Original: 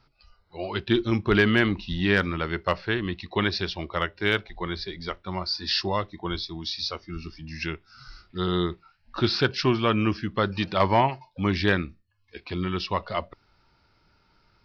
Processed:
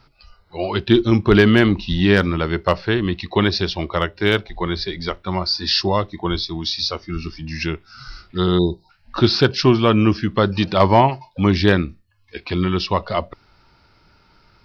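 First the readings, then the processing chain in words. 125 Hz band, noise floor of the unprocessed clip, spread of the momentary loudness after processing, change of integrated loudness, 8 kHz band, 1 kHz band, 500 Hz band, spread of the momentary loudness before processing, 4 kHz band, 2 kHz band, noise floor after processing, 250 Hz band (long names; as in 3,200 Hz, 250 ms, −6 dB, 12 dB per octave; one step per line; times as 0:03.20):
+9.0 dB, −65 dBFS, 13 LU, +7.5 dB, can't be measured, +6.5 dB, +8.5 dB, 13 LU, +7.0 dB, +3.5 dB, −57 dBFS, +9.0 dB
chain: time-frequency box erased 0:08.58–0:08.90, 1,000–3,600 Hz
dynamic equaliser 1,900 Hz, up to −6 dB, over −37 dBFS, Q 0.79
level +9 dB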